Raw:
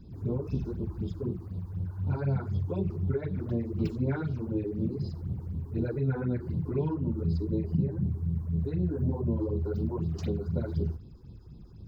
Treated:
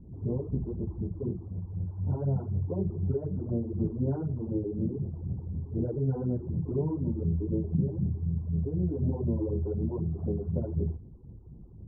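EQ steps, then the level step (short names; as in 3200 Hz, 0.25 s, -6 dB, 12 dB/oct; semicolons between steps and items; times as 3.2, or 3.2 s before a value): inverse Chebyshev low-pass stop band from 2900 Hz, stop band 60 dB; 0.0 dB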